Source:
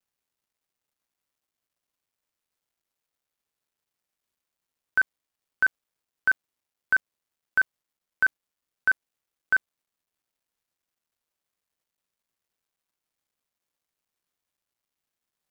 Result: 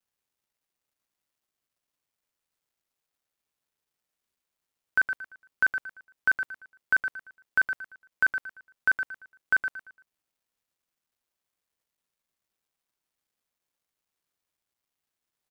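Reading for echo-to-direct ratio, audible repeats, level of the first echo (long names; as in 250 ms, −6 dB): −8.0 dB, 3, −8.5 dB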